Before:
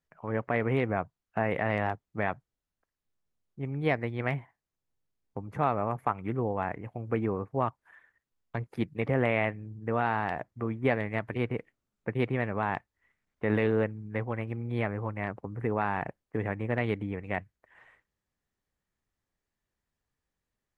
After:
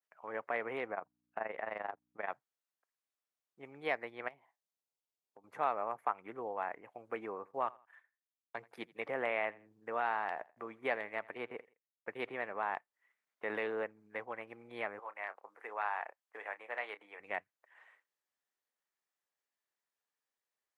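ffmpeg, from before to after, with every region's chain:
ffmpeg -i in.wav -filter_complex "[0:a]asettb=1/sr,asplit=3[link_01][link_02][link_03];[link_01]atrim=end=0.944[link_04];[link_02]atrim=start=0.94:end=2.3,asetpts=PTS-STARTPTS,afade=type=in:duration=0.004:curve=qsin,afade=type=out:start_time=1.356:duration=0.004:curve=qsin,lowpass=frequency=2500:poles=1,tremolo=f=23:d=0.788,aeval=exprs='val(0)+0.00141*(sin(2*PI*60*n/s)+sin(2*PI*2*60*n/s)/2+sin(2*PI*3*60*n/s)/3+sin(2*PI*4*60*n/s)/4+sin(2*PI*5*60*n/s)/5)':channel_layout=same[link_05];[link_03]atrim=start=2.296[link_06];[link_04][link_05]acrossfade=duration=0.004:curve1=hsin:curve2=qsin[link_07];[link_07][link_06]acrossfade=duration=0.004:curve1=qsin:curve2=hsin,asettb=1/sr,asplit=3[link_08][link_09][link_10];[link_08]atrim=end=4.284[link_11];[link_09]atrim=start=4.28:end=5.44,asetpts=PTS-STARTPTS,afade=type=in:duration=0.004:curve=qsin,afade=type=out:start_time=1.156:duration=0.004:curve=qsin,highpass=110,equalizer=frequency=1600:width=1.5:gain=-9.5,acompressor=threshold=-48dB:ratio=2.5:attack=3.2:release=140:knee=1:detection=peak[link_12];[link_10]atrim=start=5.436[link_13];[link_11][link_12]acrossfade=duration=0.004:curve1=hsin:curve2=qsin[link_14];[link_14][link_13]acrossfade=duration=0.004:curve1=qsin:curve2=hsin,asettb=1/sr,asplit=3[link_15][link_16][link_17];[link_15]atrim=end=7.344[link_18];[link_16]atrim=start=7.34:end=12.71,asetpts=PTS-STARTPTS,afade=type=in:duration=0.004:curve=qsin,afade=type=out:start_time=5.366:duration=0.004:curve=qsin,agate=range=-33dB:threshold=-55dB:ratio=3:release=100:detection=peak,aecho=1:1:83|166:0.075|0.024,atrim=end_sample=236817[link_19];[link_17]atrim=start=12.706[link_20];[link_18][link_19]acrossfade=duration=0.004:curve1=hsin:curve2=qsin[link_21];[link_21][link_20]acrossfade=duration=0.004:curve1=qsin:curve2=hsin,asettb=1/sr,asplit=3[link_22][link_23][link_24];[link_22]atrim=end=14.994[link_25];[link_23]atrim=start=14.99:end=17.2,asetpts=PTS-STARTPTS,afade=type=in:duration=0.004:curve=qsin,afade=type=out:start_time=2.206:duration=0.004:curve=qsin,highpass=650,asplit=2[link_26][link_27];[link_27]adelay=29,volume=-12.5dB[link_28];[link_26][link_28]amix=inputs=2:normalize=0,atrim=end_sample=97461[link_29];[link_24]atrim=start=17.196[link_30];[link_25][link_29]acrossfade=duration=0.004:curve1=hsin:curve2=qsin[link_31];[link_31][link_30]acrossfade=duration=0.004:curve1=qsin:curve2=hsin,highpass=580,adynamicequalizer=threshold=0.00501:dfrequency=2100:dqfactor=0.7:tfrequency=2100:tqfactor=0.7:attack=5:release=100:ratio=0.375:range=3.5:mode=cutabove:tftype=highshelf,volume=-4dB" out.wav

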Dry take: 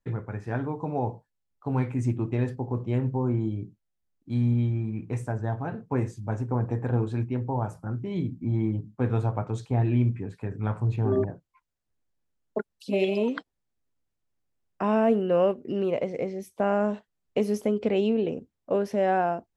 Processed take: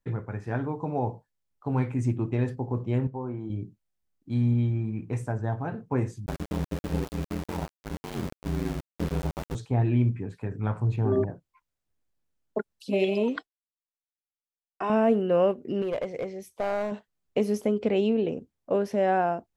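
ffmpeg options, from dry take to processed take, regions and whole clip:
ffmpeg -i in.wav -filter_complex "[0:a]asettb=1/sr,asplit=3[link_01][link_02][link_03];[link_01]atrim=end=3.074[link_04];[link_02]atrim=start=3.07:end=3.5,asetpts=PTS-STARTPTS,afade=type=in:duration=0.004:curve=qsin,afade=type=out:start_time=0.426:duration=0.004:curve=qsin,lowpass=frequency=1400:poles=1,lowshelf=frequency=370:gain=-11.5[link_05];[link_03]atrim=start=3.496[link_06];[link_04][link_05]acrossfade=duration=0.004:curve1=hsin:curve2=qsin[link_07];[link_07][link_06]acrossfade=duration=0.004:curve1=qsin:curve2=hsin,asettb=1/sr,asplit=3[link_08][link_09][link_10];[link_08]atrim=end=6.264[link_11];[link_09]atrim=start=6.26:end=9.55,asetpts=PTS-STARTPTS,afade=type=in:duration=0.004:curve=qsin,afade=type=out:start_time=3.286:duration=0.004:curve=qsin,equalizer=frequency=1100:width_type=o:width=1.6:gain=-6.5,aeval=exprs='val(0)*gte(abs(val(0)),0.0355)':channel_layout=same,aeval=exprs='val(0)*sin(2*PI*44*n/s)':channel_layout=same[link_12];[link_10]atrim=start=9.546[link_13];[link_11][link_12]acrossfade=duration=0.004:curve1=hsin:curve2=qsin[link_14];[link_14][link_13]acrossfade=duration=0.004:curve1=qsin:curve2=hsin,asettb=1/sr,asplit=3[link_15][link_16][link_17];[link_15]atrim=end=13.364[link_18];[link_16]atrim=start=13.36:end=14.9,asetpts=PTS-STARTPTS,afade=type=in:duration=0.004:curve=qsin,afade=type=out:start_time=1.536:duration=0.004:curve=qsin,agate=range=-33dB:threshold=-50dB:ratio=3:release=100:detection=peak,lowshelf=frequency=490:gain=-9,aecho=1:1:2.7:0.54,atrim=end_sample=67914[link_19];[link_17]atrim=start=14.896[link_20];[link_18][link_19]acrossfade=duration=0.004:curve1=hsin:curve2=qsin[link_21];[link_21][link_20]acrossfade=duration=0.004:curve1=qsin:curve2=hsin,asettb=1/sr,asplit=3[link_22][link_23][link_24];[link_22]atrim=end=15.824[link_25];[link_23]atrim=start=15.82:end=16.92,asetpts=PTS-STARTPTS,afade=type=in:duration=0.004:curve=qsin,afade=type=out:start_time=1.096:duration=0.004:curve=qsin,equalizer=frequency=240:width_type=o:width=1.3:gain=-7,aeval=exprs='clip(val(0),-1,0.0562)':channel_layout=same[link_26];[link_24]atrim=start=16.916[link_27];[link_25][link_26]acrossfade=duration=0.004:curve1=hsin:curve2=qsin[link_28];[link_28][link_27]acrossfade=duration=0.004:curve1=qsin:curve2=hsin" out.wav

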